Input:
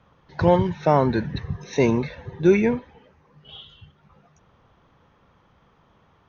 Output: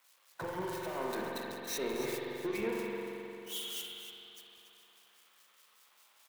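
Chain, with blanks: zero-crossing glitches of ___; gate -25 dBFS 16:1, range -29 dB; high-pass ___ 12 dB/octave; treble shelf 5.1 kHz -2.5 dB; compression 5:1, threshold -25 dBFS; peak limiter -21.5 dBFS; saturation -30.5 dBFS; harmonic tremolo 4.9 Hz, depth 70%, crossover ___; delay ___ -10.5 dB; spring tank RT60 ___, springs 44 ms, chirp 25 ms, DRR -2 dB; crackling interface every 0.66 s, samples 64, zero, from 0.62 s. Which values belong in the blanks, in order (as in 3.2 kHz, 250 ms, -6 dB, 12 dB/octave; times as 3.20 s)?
-18.5 dBFS, 360 Hz, 2.2 kHz, 284 ms, 3.1 s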